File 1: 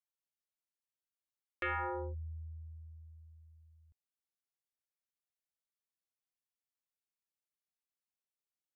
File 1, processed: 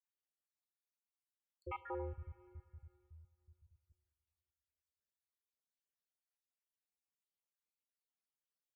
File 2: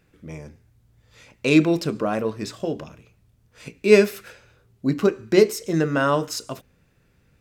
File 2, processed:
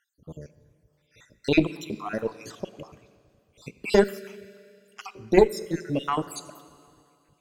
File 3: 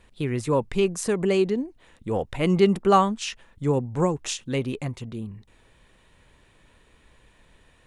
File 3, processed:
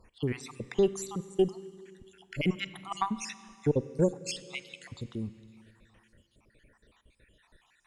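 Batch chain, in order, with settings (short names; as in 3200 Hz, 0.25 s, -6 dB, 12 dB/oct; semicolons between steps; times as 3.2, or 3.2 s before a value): random spectral dropouts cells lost 67%; Schroeder reverb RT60 2.4 s, combs from 32 ms, DRR 15 dB; added harmonics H 2 -9 dB, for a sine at -3.5 dBFS; gain -2 dB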